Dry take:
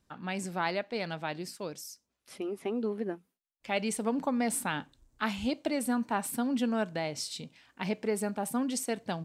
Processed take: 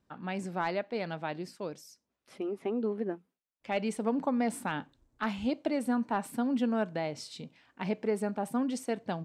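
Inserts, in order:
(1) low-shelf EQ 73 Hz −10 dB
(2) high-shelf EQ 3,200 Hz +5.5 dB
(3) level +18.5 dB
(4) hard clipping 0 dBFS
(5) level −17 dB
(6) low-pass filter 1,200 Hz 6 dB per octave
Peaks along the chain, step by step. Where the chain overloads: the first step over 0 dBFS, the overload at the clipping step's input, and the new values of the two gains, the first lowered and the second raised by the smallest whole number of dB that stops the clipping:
−15.0, −14.0, +4.5, 0.0, −17.0, −17.5 dBFS
step 3, 4.5 dB
step 3 +13.5 dB, step 5 −12 dB

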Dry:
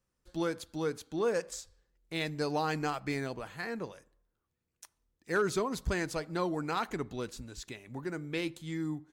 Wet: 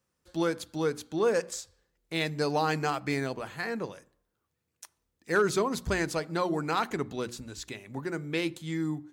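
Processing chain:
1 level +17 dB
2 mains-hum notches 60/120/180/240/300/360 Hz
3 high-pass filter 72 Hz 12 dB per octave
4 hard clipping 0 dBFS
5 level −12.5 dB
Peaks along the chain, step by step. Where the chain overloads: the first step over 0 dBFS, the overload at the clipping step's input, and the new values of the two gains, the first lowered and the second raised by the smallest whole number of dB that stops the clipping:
−3.0, −2.5, −2.0, −2.0, −14.5 dBFS
no step passes full scale

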